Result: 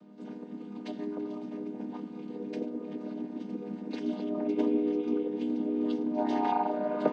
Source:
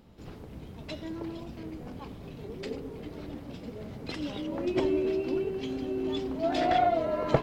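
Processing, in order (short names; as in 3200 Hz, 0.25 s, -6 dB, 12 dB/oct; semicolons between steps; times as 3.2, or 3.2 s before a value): chord vocoder minor triad, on G3; in parallel at 0 dB: compressor, threshold -39 dBFS, peak gain reduction 18.5 dB; on the sum: speed mistake 24 fps film run at 25 fps; gain -2 dB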